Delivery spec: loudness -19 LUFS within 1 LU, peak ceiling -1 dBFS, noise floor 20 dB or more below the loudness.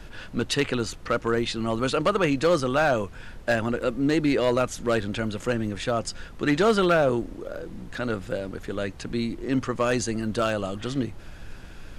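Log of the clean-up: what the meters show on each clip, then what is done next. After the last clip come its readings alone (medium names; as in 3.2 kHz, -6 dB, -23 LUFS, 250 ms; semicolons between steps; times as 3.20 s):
clipped samples 0.5%; clipping level -14.5 dBFS; noise floor -42 dBFS; noise floor target -46 dBFS; loudness -25.5 LUFS; peak level -14.5 dBFS; loudness target -19.0 LUFS
-> clip repair -14.5 dBFS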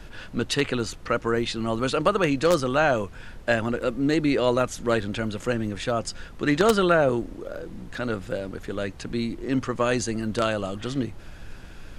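clipped samples 0.0%; noise floor -42 dBFS; noise floor target -45 dBFS
-> noise print and reduce 6 dB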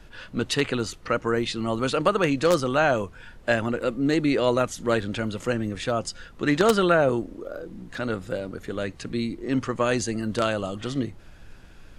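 noise floor -47 dBFS; loudness -25.0 LUFS; peak level -5.5 dBFS; loudness target -19.0 LUFS
-> trim +6 dB; peak limiter -1 dBFS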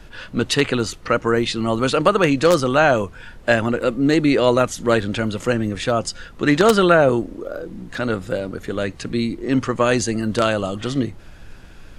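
loudness -19.5 LUFS; peak level -1.0 dBFS; noise floor -41 dBFS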